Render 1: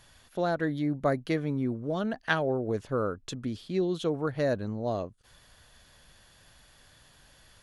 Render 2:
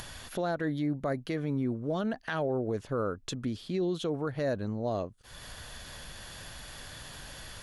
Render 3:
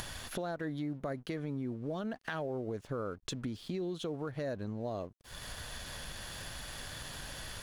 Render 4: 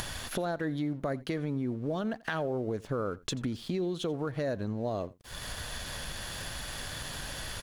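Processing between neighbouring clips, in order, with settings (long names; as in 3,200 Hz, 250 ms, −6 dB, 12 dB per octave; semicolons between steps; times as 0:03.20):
upward compression, threshold −32 dBFS; brickwall limiter −22.5 dBFS, peak gain reduction 11.5 dB
dead-zone distortion −58 dBFS; downward compressor 3 to 1, threshold −40 dBFS, peak gain reduction 10 dB; level +3 dB
single-tap delay 86 ms −22 dB; level +5 dB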